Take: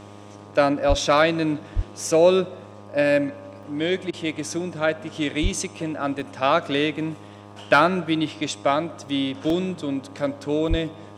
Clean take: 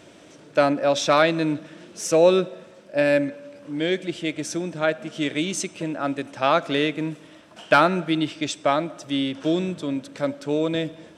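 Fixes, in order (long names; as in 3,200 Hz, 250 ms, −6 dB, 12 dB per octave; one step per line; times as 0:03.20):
hum removal 102.3 Hz, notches 12
high-pass at the plosives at 0:00.88/0:01.75/0:05.42/0:10.69
repair the gap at 0:03.63/0:06.20/0:09.09/0:09.50/0:10.68, 1.9 ms
repair the gap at 0:04.11, 22 ms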